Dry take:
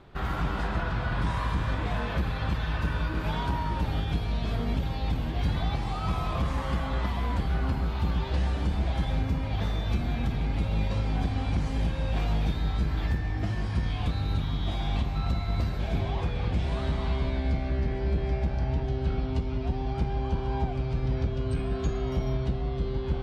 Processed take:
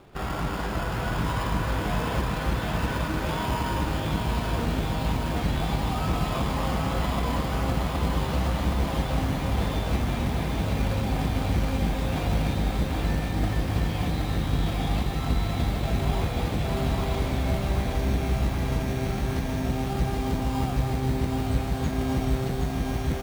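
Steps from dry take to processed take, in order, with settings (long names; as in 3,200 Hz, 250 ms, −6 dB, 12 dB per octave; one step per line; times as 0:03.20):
in parallel at −4.5 dB: decimation without filtering 22×
on the sum: low-shelf EQ 130 Hz −8 dB
single-tap delay 262 ms −8 dB
feedback echo at a low word length 771 ms, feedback 80%, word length 8 bits, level −4.5 dB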